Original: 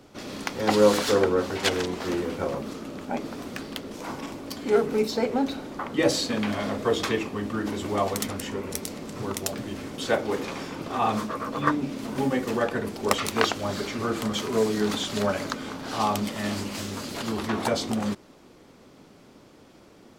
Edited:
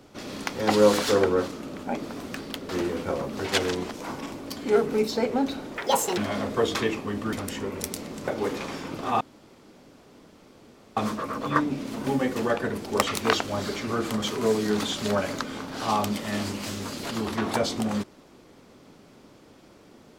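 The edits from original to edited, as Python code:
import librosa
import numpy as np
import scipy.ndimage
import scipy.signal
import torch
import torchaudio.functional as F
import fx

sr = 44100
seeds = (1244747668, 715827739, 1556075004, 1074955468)

y = fx.edit(x, sr, fx.swap(start_s=1.48, length_s=0.54, other_s=2.7, other_length_s=1.21),
    fx.speed_span(start_s=5.76, length_s=0.7, speed=1.68),
    fx.cut(start_s=7.61, length_s=0.63),
    fx.cut(start_s=9.19, length_s=0.96),
    fx.insert_room_tone(at_s=11.08, length_s=1.76), tone=tone)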